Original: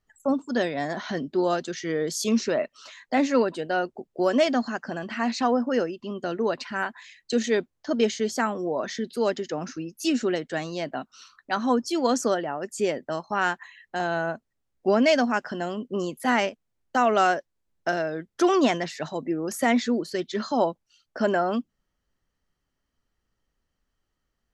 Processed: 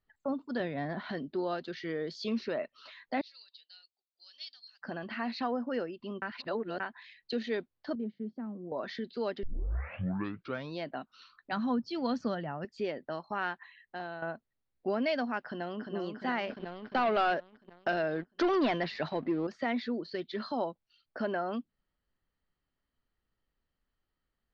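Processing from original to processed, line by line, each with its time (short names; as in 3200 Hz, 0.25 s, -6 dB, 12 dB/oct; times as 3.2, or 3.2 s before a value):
0.6–1.1 tone controls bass +9 dB, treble -9 dB
3.21–4.82 Butterworth band-pass 4600 Hz, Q 2.4
6.22–6.8 reverse
7.95–8.72 band-pass 200 Hz, Q 2.2
9.43 tape start 1.37 s
11.52–12.65 resonant low shelf 250 Hz +9 dB, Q 1.5
13.54–14.22 fade out, to -11 dB
15.42–15.94 echo throw 0.35 s, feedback 65%, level -5.5 dB
16.49–19.47 sample leveller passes 2
whole clip: elliptic low-pass 4500 Hz, stop band 70 dB; compressor 1.5:1, threshold -31 dBFS; gain -5 dB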